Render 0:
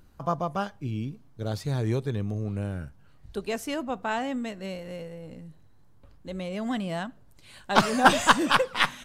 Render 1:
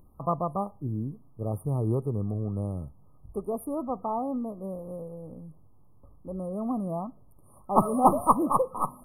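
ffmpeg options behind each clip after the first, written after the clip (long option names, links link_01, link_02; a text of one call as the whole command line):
ffmpeg -i in.wav -af "afftfilt=real='re*(1-between(b*sr/4096,1300,9000))':imag='im*(1-between(b*sr/4096,1300,9000))':win_size=4096:overlap=0.75" out.wav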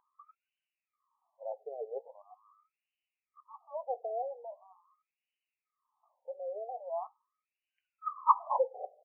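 ffmpeg -i in.wav -filter_complex "[0:a]asplit=2[link_01][link_02];[link_02]adelay=15,volume=-12dB[link_03];[link_01][link_03]amix=inputs=2:normalize=0,aexciter=amount=14.6:drive=4.2:freq=2300,afftfilt=real='re*between(b*sr/1024,550*pow(2200/550,0.5+0.5*sin(2*PI*0.42*pts/sr))/1.41,550*pow(2200/550,0.5+0.5*sin(2*PI*0.42*pts/sr))*1.41)':imag='im*between(b*sr/1024,550*pow(2200/550,0.5+0.5*sin(2*PI*0.42*pts/sr))/1.41,550*pow(2200/550,0.5+0.5*sin(2*PI*0.42*pts/sr))*1.41)':win_size=1024:overlap=0.75,volume=-2.5dB" out.wav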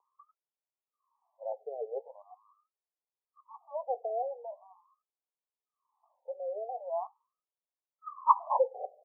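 ffmpeg -i in.wav -af "asuperpass=centerf=650:order=12:qfactor=0.85,volume=2.5dB" out.wav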